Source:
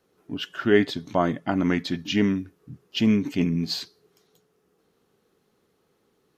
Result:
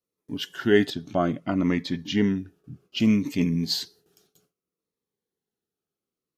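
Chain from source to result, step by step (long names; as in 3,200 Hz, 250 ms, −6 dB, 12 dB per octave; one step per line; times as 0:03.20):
noise gate with hold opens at −52 dBFS
high-shelf EQ 5,200 Hz +9.5 dB, from 0:00.90 −4.5 dB, from 0:03.00 +7 dB
phaser whose notches keep moving one way falling 0.63 Hz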